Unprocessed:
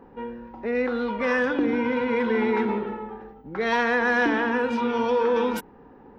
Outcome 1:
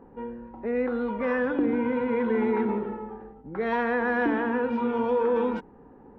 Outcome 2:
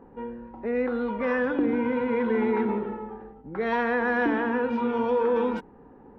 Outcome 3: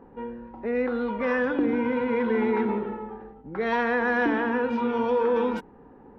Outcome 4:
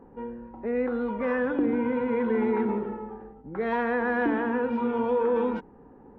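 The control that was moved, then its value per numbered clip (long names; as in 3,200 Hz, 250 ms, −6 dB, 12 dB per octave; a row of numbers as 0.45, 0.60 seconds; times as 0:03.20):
head-to-tape spacing loss, at 10 kHz: 37, 29, 21, 46 decibels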